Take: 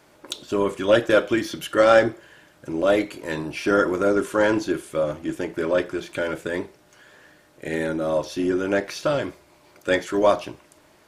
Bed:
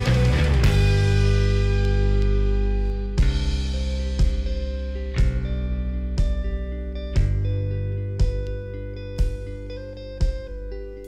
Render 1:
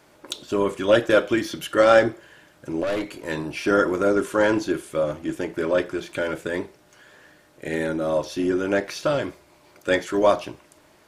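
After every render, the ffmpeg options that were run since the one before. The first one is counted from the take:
-filter_complex "[0:a]asettb=1/sr,asplit=3[a][b][c];[a]atrim=end=2.834[d];[b]atrim=start=2.83:end=3.27,asetpts=PTS-STARTPTS,afade=t=in:d=0.004:c=qsin,afade=t=out:st=0.436:d=0.004:c=qsin,aeval=exprs='(tanh(12.6*val(0)+0.25)-tanh(0.25))/12.6':c=same[e];[c]atrim=start=3.266[f];[d][e]acrossfade=d=0.004:c1=hsin:c2=qsin[g];[g][f]acrossfade=d=0.004:c1=qsin:c2=hsin"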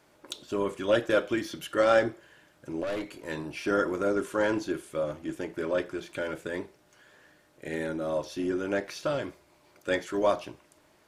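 -af "volume=-7dB"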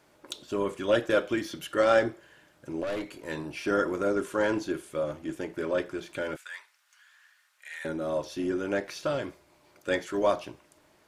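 -filter_complex "[0:a]asettb=1/sr,asplit=3[a][b][c];[a]atrim=end=6.364[d];[b]atrim=start=6.36:end=7.85,asetpts=PTS-STARTPTS,afade=t=in:d=0.004:c=qsin,afade=t=out:st=1.486:d=0.004:c=qsin,highpass=f=1.2k:w=0.5412,highpass=f=1.2k:w=1.3066[e];[c]atrim=start=7.846[f];[d][e]acrossfade=d=0.004:c1=hsin:c2=qsin[g];[g][f]acrossfade=d=0.004:c1=qsin:c2=hsin"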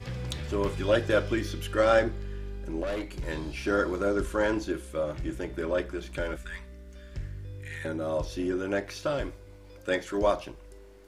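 -filter_complex "[1:a]volume=-17dB[a];[0:a][a]amix=inputs=2:normalize=0"

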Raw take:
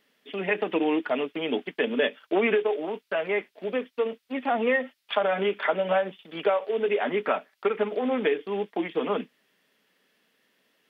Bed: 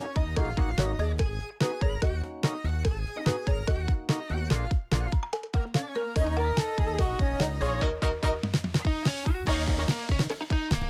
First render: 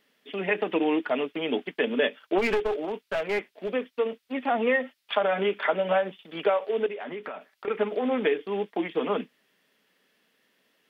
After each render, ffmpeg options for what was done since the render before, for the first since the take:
-filter_complex "[0:a]asettb=1/sr,asplit=3[a][b][c];[a]atrim=end=2.384[d];[b]atrim=start=2.38:end=3.71,asetpts=PTS-STARTPTS,afade=t=in:d=0.004:c=qsin,afade=t=out:st=1.326:d=0.004:c=qsin,aeval=exprs='clip(val(0),-1,0.0473)':c=same[e];[c]atrim=start=3.706[f];[d][e]acrossfade=d=0.004:c1=hsin:c2=qsin[g];[g][f]acrossfade=d=0.004:c1=qsin:c2=hsin,asettb=1/sr,asplit=3[h][i][j];[h]atrim=end=6.864[k];[i]atrim=start=6.86:end=7.68,asetpts=PTS-STARTPTS,afade=t=in:d=0.004:c=qsin,afade=t=out:st=0.816:d=0.004:c=qsin,acompressor=threshold=-32dB:ratio=10:attack=3.2:release=140:knee=1:detection=peak[l];[j]atrim=start=7.676[m];[k][l]acrossfade=d=0.004:c1=hsin:c2=qsin[n];[n][m]acrossfade=d=0.004:c1=qsin:c2=hsin"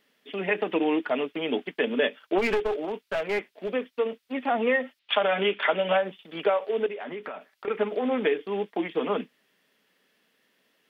-filter_complex "[0:a]asettb=1/sr,asplit=3[a][b][c];[a]atrim=end=4.994[d];[b]atrim=start=4.99:end=5.97,asetpts=PTS-STARTPTS,afade=t=in:d=0.004:c=qsin,afade=t=out:st=0.976:d=0.004:c=qsin,lowpass=f=3.2k:t=q:w=2.2[e];[c]atrim=start=5.966[f];[d][e]acrossfade=d=0.004:c1=hsin:c2=qsin[g];[g][f]acrossfade=d=0.004:c1=qsin:c2=hsin"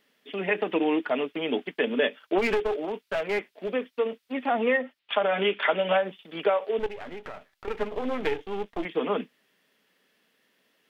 -filter_complex "[0:a]asettb=1/sr,asplit=3[a][b][c];[a]atrim=end=4.774[d];[b]atrim=start=4.77:end=5.34,asetpts=PTS-STARTPTS,afade=t=in:d=0.004:c=qsin,afade=t=out:st=0.566:d=0.004:c=qsin,highshelf=f=2.6k:g=-8.5[e];[c]atrim=start=5.336[f];[d][e]acrossfade=d=0.004:c1=hsin:c2=qsin[g];[g][f]acrossfade=d=0.004:c1=qsin:c2=hsin,asettb=1/sr,asplit=3[h][i][j];[h]atrim=end=6.794[k];[i]atrim=start=6.79:end=8.85,asetpts=PTS-STARTPTS,afade=t=in:d=0.004:c=qsin,afade=t=out:st=2.056:d=0.004:c=qsin,aeval=exprs='if(lt(val(0),0),0.251*val(0),val(0))':c=same[l];[j]atrim=start=8.846[m];[k][l]acrossfade=d=0.004:c1=hsin:c2=qsin[n];[n][m]acrossfade=d=0.004:c1=qsin:c2=hsin"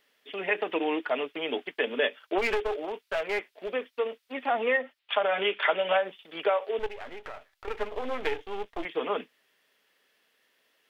-af "equalizer=f=190:w=1:g=-12.5"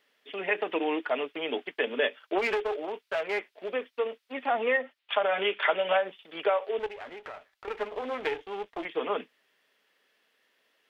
-af "highpass=f=130:p=1,highshelf=f=6.3k:g=-6.5"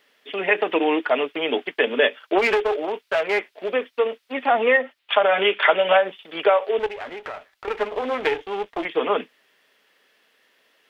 -af "volume=8.5dB"

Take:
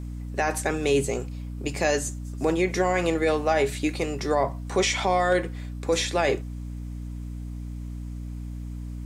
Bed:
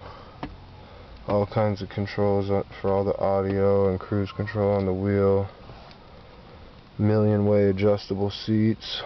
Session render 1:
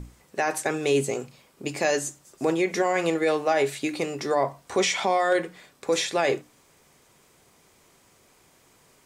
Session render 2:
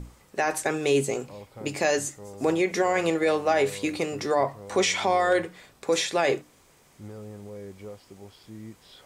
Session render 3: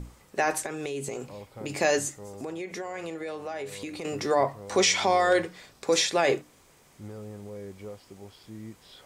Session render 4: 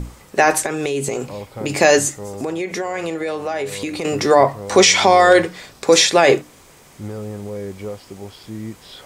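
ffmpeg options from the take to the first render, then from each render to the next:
-af "bandreject=f=60:t=h:w=6,bandreject=f=120:t=h:w=6,bandreject=f=180:t=h:w=6,bandreject=f=240:t=h:w=6,bandreject=f=300:t=h:w=6"
-filter_complex "[1:a]volume=-20.5dB[a];[0:a][a]amix=inputs=2:normalize=0"
-filter_complex "[0:a]asettb=1/sr,asplit=3[a][b][c];[a]atrim=end=0.634[d];[b]atrim=start=0.63:end=1.7,asetpts=PTS-STARTPTS,afade=t=in:d=0.004:c=qsin,afade=t=out:st=1.066:d=0.004:c=qsin,acompressor=threshold=-29dB:ratio=12:attack=3.2:release=140:knee=1:detection=peak[e];[c]atrim=start=1.696[f];[d][e]acrossfade=d=0.004:c1=hsin:c2=qsin[g];[g][f]acrossfade=d=0.004:c1=qsin:c2=hsin,asettb=1/sr,asplit=3[h][i][j];[h]atrim=end=2.244[k];[i]atrim=start=2.24:end=4.05,asetpts=PTS-STARTPTS,afade=t=in:d=0.004:c=qsin,afade=t=out:st=1.806:d=0.004:c=qsin,acompressor=threshold=-36dB:ratio=3:attack=3.2:release=140:knee=1:detection=peak[l];[j]atrim=start=4.046[m];[k][l]acrossfade=d=0.004:c1=hsin:c2=qsin[n];[n][m]acrossfade=d=0.004:c1=qsin:c2=hsin,asettb=1/sr,asplit=3[o][p][q];[o]atrim=end=4.684[r];[p]atrim=start=4.68:end=6.1,asetpts=PTS-STARTPTS,afade=t=in:d=0.004:c=qsin,afade=t=out:st=1.416:d=0.004:c=qsin,equalizer=f=5.1k:w=1.7:g=5.5[s];[q]atrim=start=6.096[t];[r][s]acrossfade=d=0.004:c1=hsin:c2=qsin[u];[u][t]acrossfade=d=0.004:c1=qsin:c2=hsin"
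-af "volume=11.5dB,alimiter=limit=-1dB:level=0:latency=1"

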